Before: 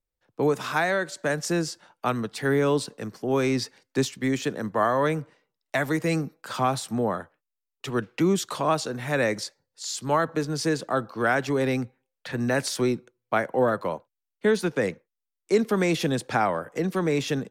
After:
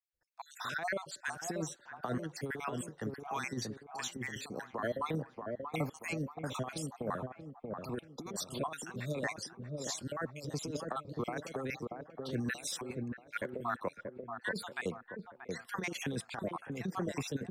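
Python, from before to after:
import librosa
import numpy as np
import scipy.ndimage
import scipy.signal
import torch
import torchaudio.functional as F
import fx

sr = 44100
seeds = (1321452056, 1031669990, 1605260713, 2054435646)

y = fx.spec_dropout(x, sr, seeds[0], share_pct=54)
y = fx.over_compress(y, sr, threshold_db=-27.0, ratio=-0.5)
y = fx.echo_wet_lowpass(y, sr, ms=633, feedback_pct=42, hz=1000.0, wet_db=-3.5)
y = y * librosa.db_to_amplitude(-8.0)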